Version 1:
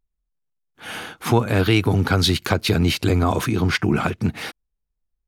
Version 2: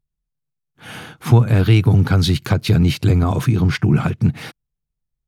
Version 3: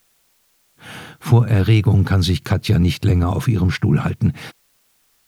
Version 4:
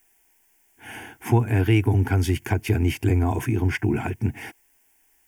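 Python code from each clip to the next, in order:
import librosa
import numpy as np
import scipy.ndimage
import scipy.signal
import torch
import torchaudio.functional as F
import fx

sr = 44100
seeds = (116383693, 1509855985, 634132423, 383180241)

y1 = fx.peak_eq(x, sr, hz=130.0, db=14.5, octaves=1.1)
y1 = y1 * 10.0 ** (-3.0 / 20.0)
y2 = fx.quant_dither(y1, sr, seeds[0], bits=10, dither='triangular')
y2 = y2 * 10.0 ** (-1.0 / 20.0)
y3 = fx.fixed_phaser(y2, sr, hz=820.0, stages=8)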